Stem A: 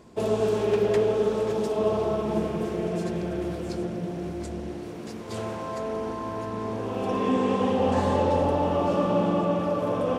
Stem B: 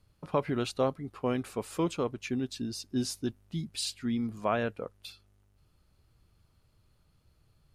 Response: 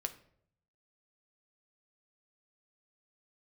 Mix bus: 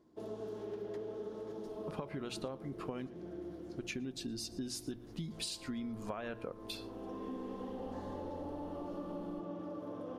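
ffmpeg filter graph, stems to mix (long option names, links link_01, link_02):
-filter_complex "[0:a]equalizer=frequency=315:width_type=o:width=0.33:gain=12,equalizer=frequency=2500:width_type=o:width=0.33:gain=-9,equalizer=frequency=8000:width_type=o:width=0.33:gain=-9,volume=-19.5dB[link_01];[1:a]asubboost=boost=3:cutoff=51,acompressor=threshold=-31dB:ratio=6,adelay=1650,volume=0dB,asplit=3[link_02][link_03][link_04];[link_02]atrim=end=3.07,asetpts=PTS-STARTPTS,afade=type=out:start_time=3.066:duration=0.004:curve=hsin[link_05];[link_03]atrim=start=3.07:end=3.77,asetpts=PTS-STARTPTS,volume=0[link_06];[link_04]atrim=start=3.77,asetpts=PTS-STARTPTS,afade=type=in:duration=0.004:curve=hsin[link_07];[link_05][link_06][link_07]concat=n=3:v=0:a=1,asplit=3[link_08][link_09][link_10];[link_09]volume=-5.5dB[link_11];[link_10]volume=-19.5dB[link_12];[2:a]atrim=start_sample=2205[link_13];[link_11][link_13]afir=irnorm=-1:irlink=0[link_14];[link_12]aecho=0:1:116:1[link_15];[link_01][link_08][link_14][link_15]amix=inputs=4:normalize=0,bandreject=frequency=60:width_type=h:width=6,bandreject=frequency=120:width_type=h:width=6,acompressor=threshold=-38dB:ratio=6"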